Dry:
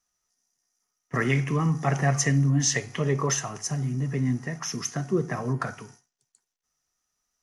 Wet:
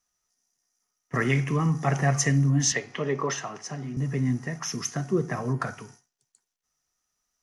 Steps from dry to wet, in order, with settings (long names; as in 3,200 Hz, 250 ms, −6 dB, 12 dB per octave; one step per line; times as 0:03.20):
0:02.72–0:03.97: three-way crossover with the lows and the highs turned down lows −16 dB, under 180 Hz, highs −17 dB, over 5,200 Hz